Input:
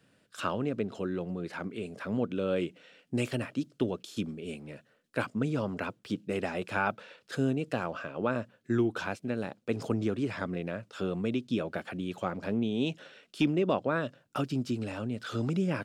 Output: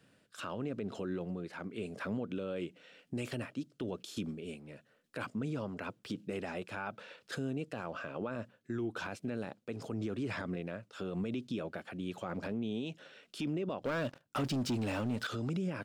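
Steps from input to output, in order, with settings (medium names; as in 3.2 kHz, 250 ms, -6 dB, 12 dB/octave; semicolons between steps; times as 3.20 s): 13.83–15.27 s: waveshaping leveller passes 3; tremolo 0.97 Hz, depth 51%; peak limiter -28.5 dBFS, peak gain reduction 12 dB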